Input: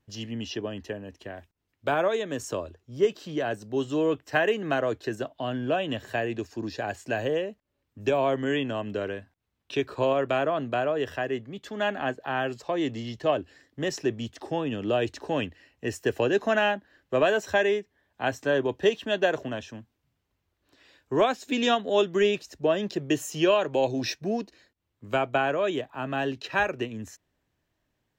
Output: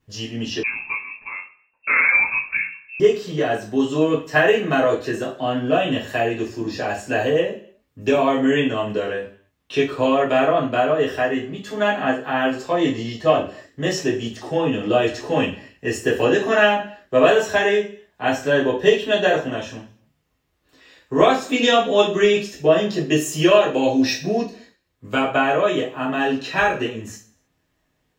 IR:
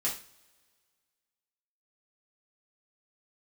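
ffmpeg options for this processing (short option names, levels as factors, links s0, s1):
-filter_complex "[1:a]atrim=start_sample=2205,afade=t=out:st=0.37:d=0.01,atrim=end_sample=16758[s0];[0:a][s0]afir=irnorm=-1:irlink=0,asettb=1/sr,asplit=3[s1][s2][s3];[s1]atrim=end=0.634[s4];[s2]atrim=start=0.63:end=3,asetpts=PTS-STARTPTS,afade=t=in:d=0.004:c=qsin,afade=t=out:st=2.366:d=0.004:c=qsin,lowpass=f=2400:t=q:w=0.5098,lowpass=f=2400:t=q:w=0.6013,lowpass=f=2400:t=q:w=0.9,lowpass=f=2400:t=q:w=2.563,afreqshift=-2800[s5];[s3]atrim=start=2.996[s6];[s4][s5]acrossfade=d=0.004:c1=hsin:c2=qsin[s7];[s7][s6]acrossfade=d=0.004:c1=qsin:c2=hsin,volume=1.41"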